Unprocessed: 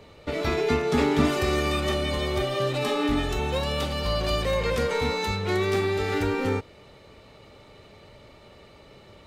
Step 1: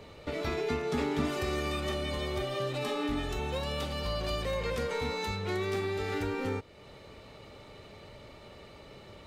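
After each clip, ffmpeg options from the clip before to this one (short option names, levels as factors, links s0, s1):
-af "acompressor=threshold=0.00708:ratio=1.5"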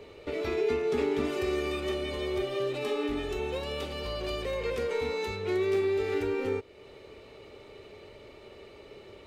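-af "equalizer=f=160:t=o:w=0.67:g=-5,equalizer=f=400:t=o:w=0.67:g=11,equalizer=f=2500:t=o:w=0.67:g=5,volume=0.668"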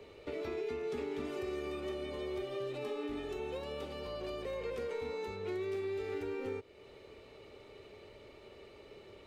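-filter_complex "[0:a]acrossover=split=120|1400[s0][s1][s2];[s0]acompressor=threshold=0.00355:ratio=4[s3];[s1]acompressor=threshold=0.0282:ratio=4[s4];[s2]acompressor=threshold=0.00447:ratio=4[s5];[s3][s4][s5]amix=inputs=3:normalize=0,volume=0.562"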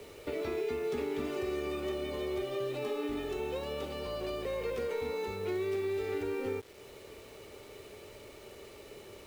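-af "acrusher=bits=9:mix=0:aa=0.000001,volume=1.58"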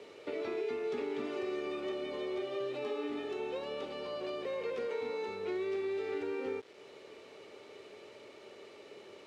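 -af "highpass=220,lowpass=5100,volume=0.841"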